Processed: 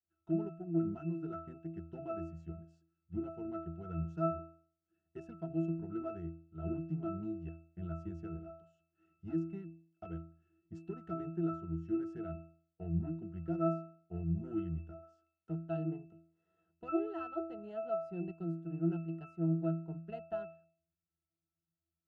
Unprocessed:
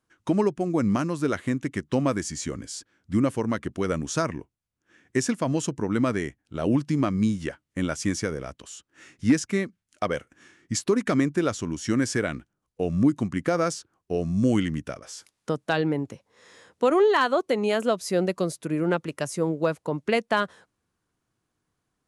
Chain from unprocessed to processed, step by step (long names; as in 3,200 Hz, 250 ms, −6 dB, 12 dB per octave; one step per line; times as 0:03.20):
harmonic generator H 5 −23 dB, 6 −27 dB, 7 −21 dB, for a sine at −10.5 dBFS
resonances in every octave E, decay 0.49 s
level +1.5 dB